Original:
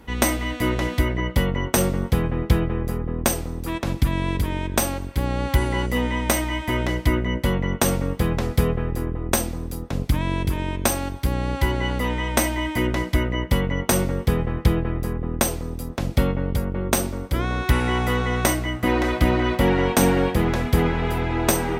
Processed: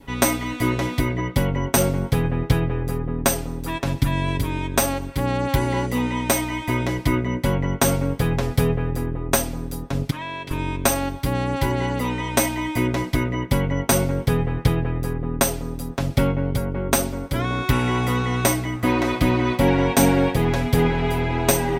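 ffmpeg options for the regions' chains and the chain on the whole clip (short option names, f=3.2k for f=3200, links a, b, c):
-filter_complex "[0:a]asettb=1/sr,asplit=3[a][b][c];[a]atrim=end=10.104[d];[b]atrim=start=10.1:end=10.51,asetpts=PTS-STARTPTS,afade=t=in:d=0.004:c=qsin,afade=t=out:st=0.406:d=0.004:c=qsin,highpass=f=990:p=1,aemphasis=mode=reproduction:type=50fm[e];[c]atrim=start=10.506[f];[d][e]acrossfade=d=0.004:c1=hsin:c2=qsin[g];[g][f]acrossfade=d=0.004:c1=qsin:c2=hsin,aecho=1:1:7.3:0.7,adynamicequalizer=threshold=0.0126:dfrequency=1300:dqfactor=2.4:tfrequency=1300:tqfactor=2.4:attack=5:release=100:ratio=0.375:range=2.5:mode=cutabove:tftype=bell"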